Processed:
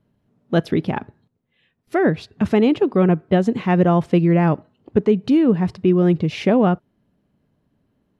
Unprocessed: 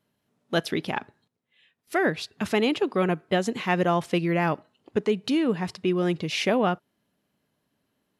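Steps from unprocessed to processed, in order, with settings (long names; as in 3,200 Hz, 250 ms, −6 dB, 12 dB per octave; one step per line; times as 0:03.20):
spectral tilt −3.5 dB per octave
level +2.5 dB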